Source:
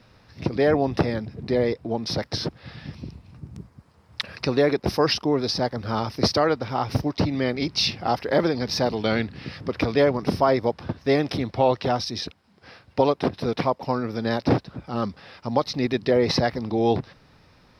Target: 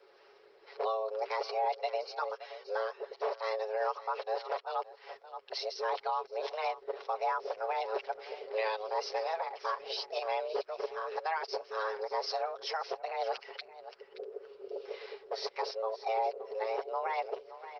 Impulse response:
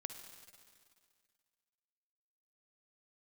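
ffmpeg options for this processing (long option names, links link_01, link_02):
-filter_complex "[0:a]areverse,asplit=2[link_01][link_02];[link_02]acompressor=threshold=-29dB:ratio=16,volume=-1dB[link_03];[link_01][link_03]amix=inputs=2:normalize=0,aresample=11025,aresample=44100,afreqshift=320,aecho=1:1:7.2:0.59,asplit=2[link_04][link_05];[link_05]aecho=0:1:572:0.158[link_06];[link_04][link_06]amix=inputs=2:normalize=0,acrossover=split=520[link_07][link_08];[link_07]aeval=exprs='val(0)*(1-0.5/2+0.5/2*cos(2*PI*1.9*n/s))':channel_layout=same[link_09];[link_08]aeval=exprs='val(0)*(1-0.5/2-0.5/2*cos(2*PI*1.9*n/s))':channel_layout=same[link_10];[link_09][link_10]amix=inputs=2:normalize=0,alimiter=limit=-14.5dB:level=0:latency=1:release=384,volume=-9dB" -ar 48000 -c:a libopus -b:a 24k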